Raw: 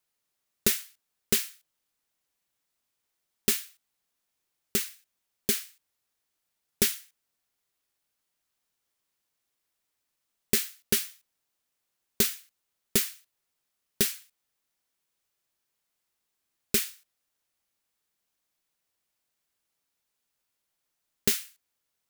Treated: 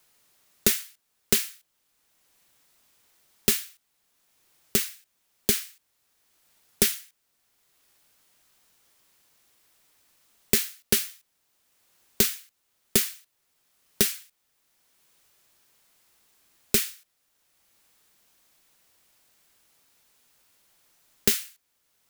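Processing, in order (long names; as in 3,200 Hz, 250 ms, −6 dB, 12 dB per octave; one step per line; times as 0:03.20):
multiband upward and downward compressor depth 40%
level +4.5 dB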